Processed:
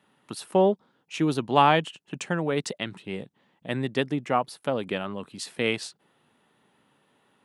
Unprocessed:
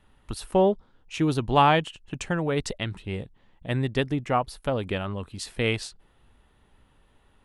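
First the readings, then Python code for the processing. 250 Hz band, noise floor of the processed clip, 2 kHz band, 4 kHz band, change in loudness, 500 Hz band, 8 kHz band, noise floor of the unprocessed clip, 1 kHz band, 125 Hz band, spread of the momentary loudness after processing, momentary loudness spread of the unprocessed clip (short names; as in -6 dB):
-0.5 dB, -70 dBFS, 0.0 dB, 0.0 dB, -0.5 dB, 0.0 dB, 0.0 dB, -62 dBFS, 0.0 dB, -4.5 dB, 17 LU, 17 LU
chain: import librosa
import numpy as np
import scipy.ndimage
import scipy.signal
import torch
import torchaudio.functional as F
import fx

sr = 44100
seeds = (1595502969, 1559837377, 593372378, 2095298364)

y = scipy.signal.sosfilt(scipy.signal.butter(4, 150.0, 'highpass', fs=sr, output='sos'), x)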